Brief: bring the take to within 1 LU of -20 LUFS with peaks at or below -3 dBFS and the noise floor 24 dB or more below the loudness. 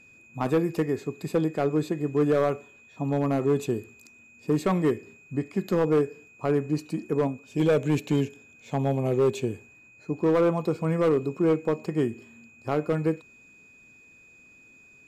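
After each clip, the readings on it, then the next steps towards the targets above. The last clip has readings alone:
clipped samples 1.6%; clipping level -16.5 dBFS; steady tone 2.5 kHz; tone level -52 dBFS; loudness -26.5 LUFS; peak level -16.5 dBFS; loudness target -20.0 LUFS
-> clip repair -16.5 dBFS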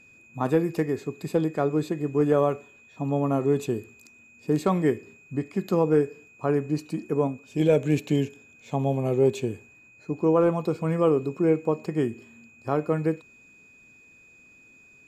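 clipped samples 0.0%; steady tone 2.5 kHz; tone level -52 dBFS
-> band-stop 2.5 kHz, Q 30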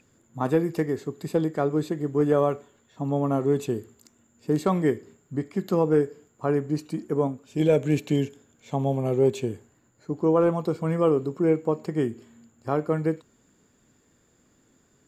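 steady tone not found; loudness -25.5 LUFS; peak level -9.5 dBFS; loudness target -20.0 LUFS
-> trim +5.5 dB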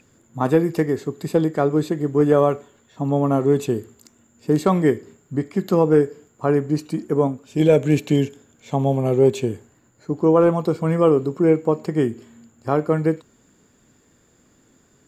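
loudness -20.0 LUFS; peak level -4.0 dBFS; noise floor -59 dBFS

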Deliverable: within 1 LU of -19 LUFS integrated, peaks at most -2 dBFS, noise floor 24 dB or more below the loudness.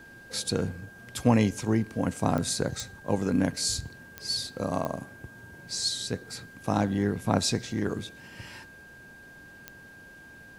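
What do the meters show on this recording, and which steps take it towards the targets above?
clicks found 5; steady tone 1.6 kHz; tone level -48 dBFS; loudness -29.0 LUFS; peak level -7.5 dBFS; loudness target -19.0 LUFS
-> de-click; band-stop 1.6 kHz, Q 30; trim +10 dB; peak limiter -2 dBFS

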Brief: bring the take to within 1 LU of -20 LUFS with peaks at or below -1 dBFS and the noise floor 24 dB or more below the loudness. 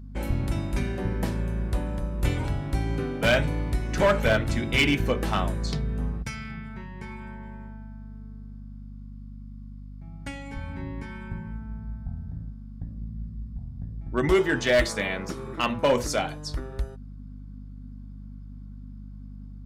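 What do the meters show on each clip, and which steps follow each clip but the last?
clipped samples 0.3%; clipping level -14.5 dBFS; hum 50 Hz; highest harmonic 250 Hz; hum level -38 dBFS; loudness -27.5 LUFS; peak level -14.5 dBFS; loudness target -20.0 LUFS
-> clip repair -14.5 dBFS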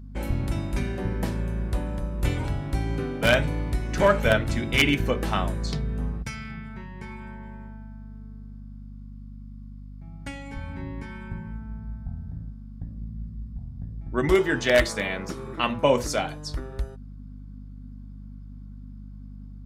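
clipped samples 0.0%; hum 50 Hz; highest harmonic 250 Hz; hum level -38 dBFS
-> hum notches 50/100/150/200/250 Hz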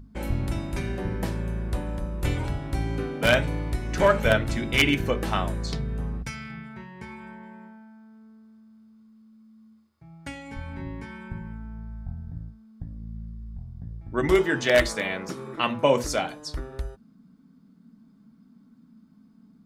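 hum not found; loudness -26.5 LUFS; peak level -5.0 dBFS; loudness target -20.0 LUFS
-> trim +6.5 dB; peak limiter -1 dBFS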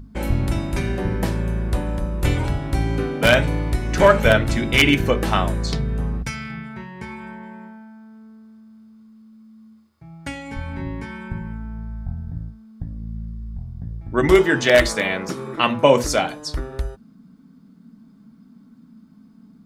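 loudness -20.5 LUFS; peak level -1.0 dBFS; noise floor -50 dBFS

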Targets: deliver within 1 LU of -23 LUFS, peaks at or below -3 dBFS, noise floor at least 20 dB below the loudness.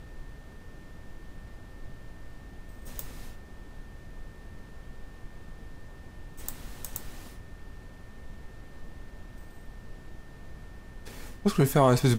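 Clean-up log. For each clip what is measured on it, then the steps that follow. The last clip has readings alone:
steady tone 1.8 kHz; tone level -59 dBFS; noise floor -48 dBFS; noise floor target -49 dBFS; loudness -29.0 LUFS; peak level -9.5 dBFS; loudness target -23.0 LUFS
-> band-stop 1.8 kHz, Q 30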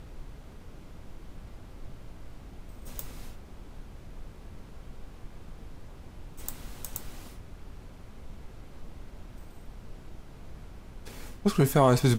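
steady tone not found; noise floor -48 dBFS; noise floor target -49 dBFS
-> noise print and reduce 6 dB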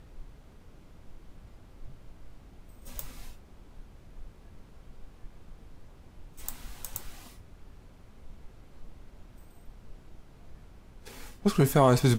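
noise floor -54 dBFS; loudness -28.5 LUFS; peak level -9.5 dBFS; loudness target -23.0 LUFS
-> trim +5.5 dB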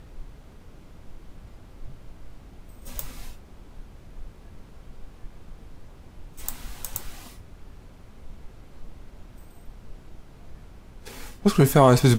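loudness -23.0 LUFS; peak level -4.0 dBFS; noise floor -49 dBFS

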